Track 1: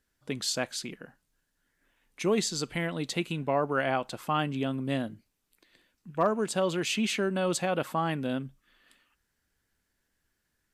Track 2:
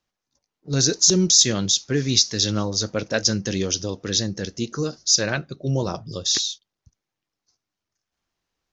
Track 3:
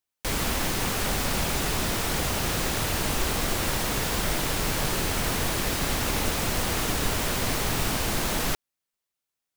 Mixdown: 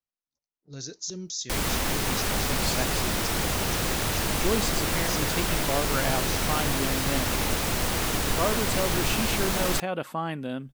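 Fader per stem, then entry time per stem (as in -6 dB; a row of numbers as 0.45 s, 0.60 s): -1.5 dB, -18.5 dB, 0.0 dB; 2.20 s, 0.00 s, 1.25 s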